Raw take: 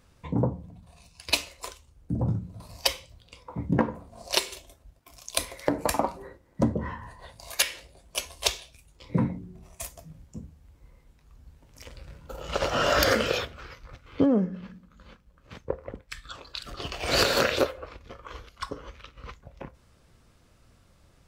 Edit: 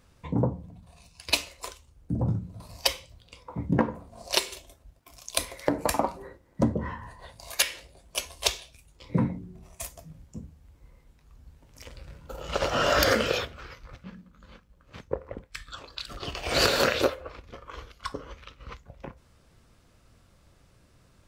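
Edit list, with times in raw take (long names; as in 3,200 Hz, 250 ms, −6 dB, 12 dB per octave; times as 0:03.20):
0:14.04–0:14.61: remove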